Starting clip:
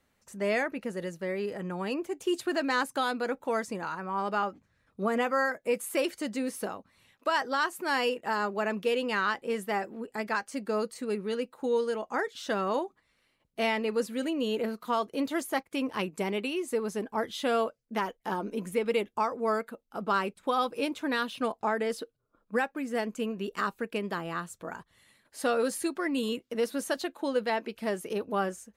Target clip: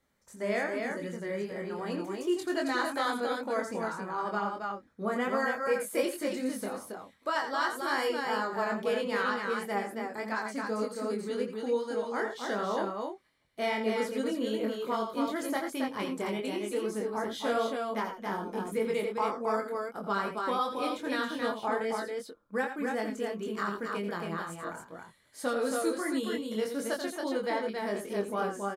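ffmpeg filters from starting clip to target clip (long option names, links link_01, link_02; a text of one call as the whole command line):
ffmpeg -i in.wav -af "bandreject=frequency=2700:width=6.8,aecho=1:1:84.55|274.1:0.355|0.631,flanger=delay=22.5:depth=2.7:speed=2.6" out.wav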